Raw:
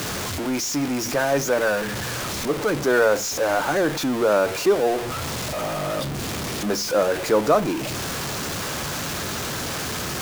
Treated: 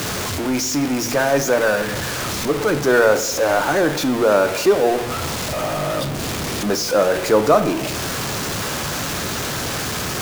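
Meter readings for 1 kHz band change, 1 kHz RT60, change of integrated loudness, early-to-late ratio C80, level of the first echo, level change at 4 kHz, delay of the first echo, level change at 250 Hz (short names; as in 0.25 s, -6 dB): +4.0 dB, 0.90 s, +4.0 dB, 14.5 dB, none, +3.5 dB, none, +4.0 dB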